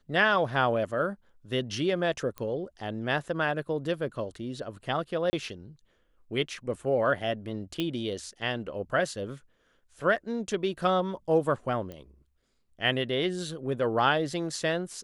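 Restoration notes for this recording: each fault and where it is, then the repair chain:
2.38 s: pop -22 dBFS
5.30–5.33 s: dropout 30 ms
7.80 s: pop -17 dBFS
11.92 s: pop -27 dBFS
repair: de-click; interpolate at 5.30 s, 30 ms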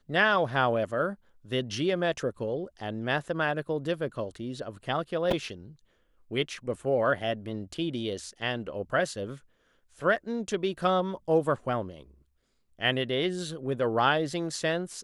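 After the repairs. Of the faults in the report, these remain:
11.92 s: pop

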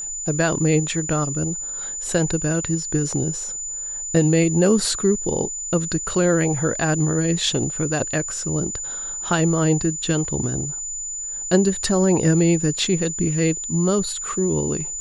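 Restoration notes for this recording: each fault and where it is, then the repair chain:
whine 7 kHz -27 dBFS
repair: band-stop 7 kHz, Q 30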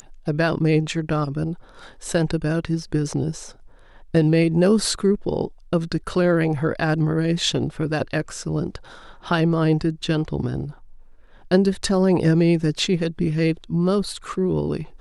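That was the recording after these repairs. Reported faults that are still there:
nothing left

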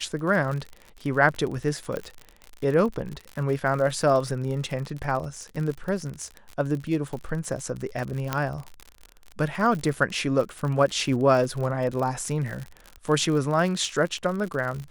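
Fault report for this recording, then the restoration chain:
crackle 56 per s -30 dBFS
1.97 s: pop -17 dBFS
8.33 s: pop -10 dBFS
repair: de-click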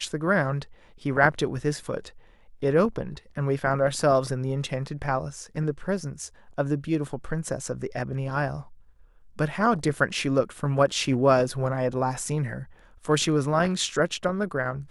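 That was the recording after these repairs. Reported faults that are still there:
nothing left

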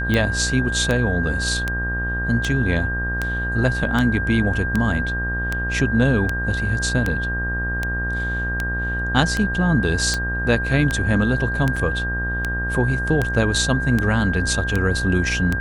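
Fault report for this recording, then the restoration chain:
buzz 60 Hz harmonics 32 -26 dBFS
tick 78 rpm -8 dBFS
whine 1.6 kHz -24 dBFS
11.76 s: dropout 4.8 ms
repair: de-click; de-hum 60 Hz, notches 32; band-stop 1.6 kHz, Q 30; interpolate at 11.76 s, 4.8 ms

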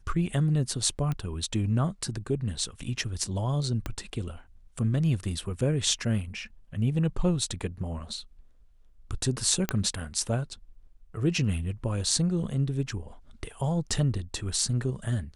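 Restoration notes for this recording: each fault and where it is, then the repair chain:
1.12 s: pop -19 dBFS
3.86 s: pop -18 dBFS
9.69 s: pop -10 dBFS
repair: de-click

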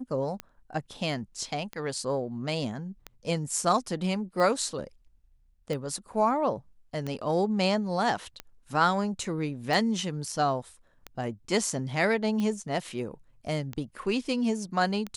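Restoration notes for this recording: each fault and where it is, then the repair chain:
tick 45 rpm -20 dBFS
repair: de-click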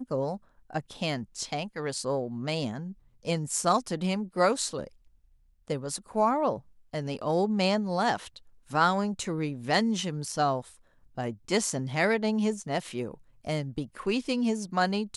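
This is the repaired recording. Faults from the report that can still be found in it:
nothing left

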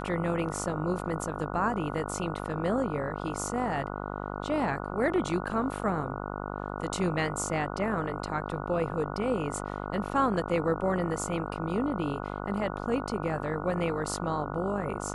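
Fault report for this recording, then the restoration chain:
buzz 50 Hz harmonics 29 -36 dBFS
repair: de-hum 50 Hz, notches 29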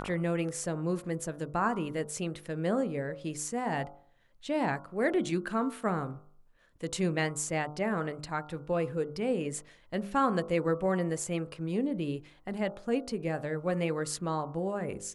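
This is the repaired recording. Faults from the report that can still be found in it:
nothing left

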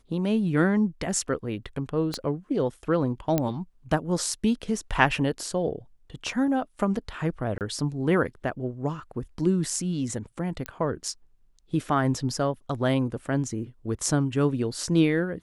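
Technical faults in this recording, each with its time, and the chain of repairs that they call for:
2.14 s: pop -16 dBFS
3.38 s: pop -10 dBFS
7.58–7.61 s: dropout 28 ms
10.66 s: pop -16 dBFS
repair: de-click; interpolate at 7.58 s, 28 ms

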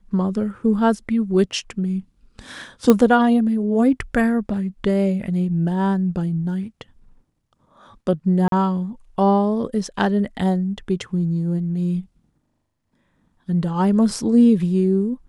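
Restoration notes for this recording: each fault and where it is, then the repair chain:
2.90 s: pop -2 dBFS
8.48–8.52 s: dropout 42 ms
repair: de-click; interpolate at 8.48 s, 42 ms

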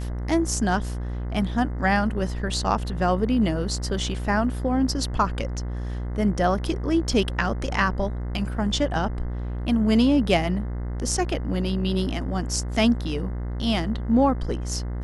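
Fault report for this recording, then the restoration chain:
buzz 60 Hz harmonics 35 -29 dBFS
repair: de-hum 60 Hz, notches 35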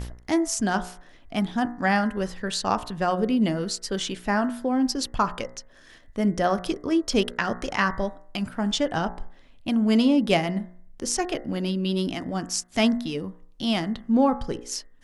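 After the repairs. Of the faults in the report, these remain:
nothing left

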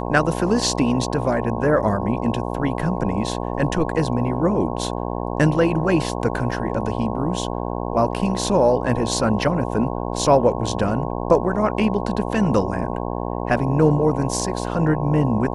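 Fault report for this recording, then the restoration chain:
buzz 60 Hz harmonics 18 -26 dBFS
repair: de-hum 60 Hz, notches 18

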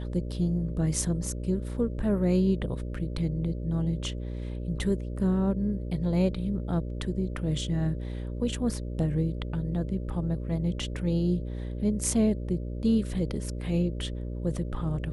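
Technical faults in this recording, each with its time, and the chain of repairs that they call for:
buzz 60 Hz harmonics 10 -34 dBFS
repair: de-hum 60 Hz, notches 10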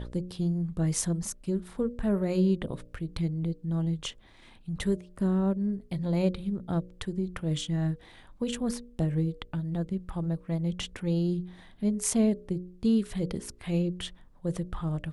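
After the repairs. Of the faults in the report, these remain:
nothing left

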